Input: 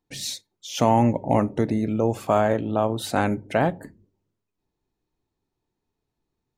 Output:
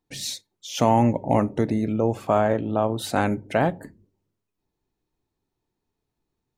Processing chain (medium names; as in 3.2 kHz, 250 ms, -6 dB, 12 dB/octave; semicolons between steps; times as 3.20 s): 1.92–2.99 s: treble shelf 4.1 kHz -7.5 dB